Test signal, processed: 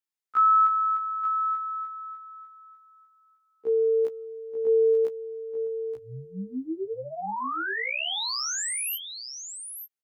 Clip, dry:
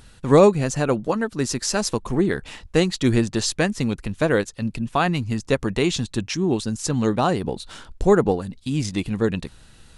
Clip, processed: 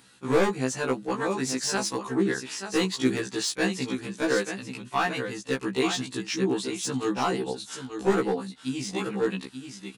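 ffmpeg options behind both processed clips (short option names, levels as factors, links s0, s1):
-filter_complex "[0:a]aecho=1:1:884:0.355,acrossover=split=3000[s0][s1];[s1]asoftclip=type=tanh:threshold=0.119[s2];[s0][s2]amix=inputs=2:normalize=0,highpass=250,asoftclip=type=hard:threshold=0.237,equalizer=f=590:w=3.4:g=-9,afftfilt=real='re*1.73*eq(mod(b,3),0)':imag='im*1.73*eq(mod(b,3),0)':win_size=2048:overlap=0.75"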